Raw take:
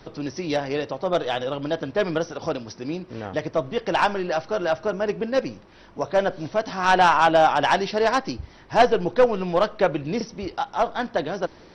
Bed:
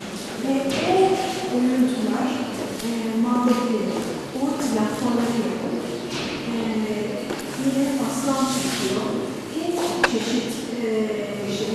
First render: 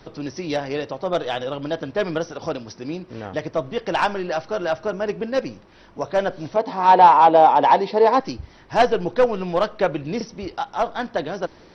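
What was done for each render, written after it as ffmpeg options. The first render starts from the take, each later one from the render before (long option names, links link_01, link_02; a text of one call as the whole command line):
ffmpeg -i in.wav -filter_complex "[0:a]asettb=1/sr,asplit=3[link_01][link_02][link_03];[link_01]atrim=end=6.564[link_04];[link_02]atrim=start=6.56:end=8.2,asetpts=PTS-STARTPTS,afade=type=in:duration=0.004:curve=qsin,afade=type=out:start_time=1.636:duration=0.004:curve=qsin,highpass=150,equalizer=frequency=260:width_type=q:width=4:gain=5,equalizer=frequency=480:width_type=q:width=4:gain=9,equalizer=frequency=900:width_type=q:width=4:gain=10,equalizer=frequency=1500:width_type=q:width=4:gain=-9,equalizer=frequency=2900:width_type=q:width=4:gain=-7,lowpass=frequency=4400:width=0.5412,lowpass=frequency=4400:width=1.3066[link_05];[link_03]atrim=start=8.196[link_06];[link_04][link_05]acrossfade=duration=0.004:curve1=hsin:curve2=qsin[link_07];[link_07][link_06]acrossfade=duration=0.004:curve1=qsin:curve2=hsin" out.wav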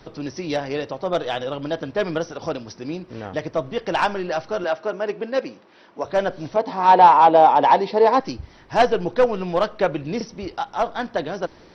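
ffmpeg -i in.wav -filter_complex "[0:a]asettb=1/sr,asplit=3[link_01][link_02][link_03];[link_01]atrim=end=4.644[link_04];[link_02]atrim=start=4.64:end=6.05,asetpts=PTS-STARTPTS,afade=type=in:duration=0.004:curve=qsin,afade=type=out:start_time=1.406:duration=0.004:curve=qsin,highpass=260,lowpass=5400[link_05];[link_03]atrim=start=6.046[link_06];[link_04][link_05]acrossfade=duration=0.004:curve1=hsin:curve2=qsin[link_07];[link_07][link_06]acrossfade=duration=0.004:curve1=qsin:curve2=hsin" out.wav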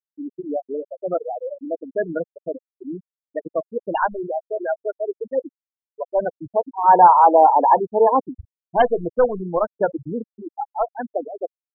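ffmpeg -i in.wav -af "afftfilt=real='re*gte(hypot(re,im),0.251)':imag='im*gte(hypot(re,im),0.251)':win_size=1024:overlap=0.75,highshelf=frequency=3500:gain=9" out.wav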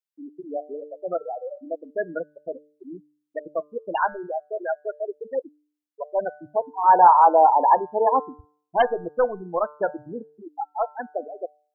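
ffmpeg -i in.wav -af "lowshelf=frequency=380:gain=-12,bandreject=frequency=149.1:width_type=h:width=4,bandreject=frequency=298.2:width_type=h:width=4,bandreject=frequency=447.3:width_type=h:width=4,bandreject=frequency=596.4:width_type=h:width=4,bandreject=frequency=745.5:width_type=h:width=4,bandreject=frequency=894.6:width_type=h:width=4,bandreject=frequency=1043.7:width_type=h:width=4,bandreject=frequency=1192.8:width_type=h:width=4,bandreject=frequency=1341.9:width_type=h:width=4,bandreject=frequency=1491:width_type=h:width=4,bandreject=frequency=1640.1:width_type=h:width=4" out.wav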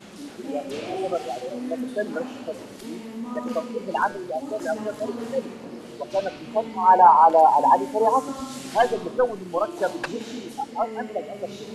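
ffmpeg -i in.wav -i bed.wav -filter_complex "[1:a]volume=-12dB[link_01];[0:a][link_01]amix=inputs=2:normalize=0" out.wav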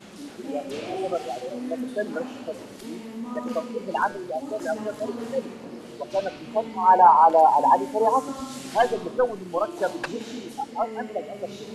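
ffmpeg -i in.wav -af "volume=-1dB" out.wav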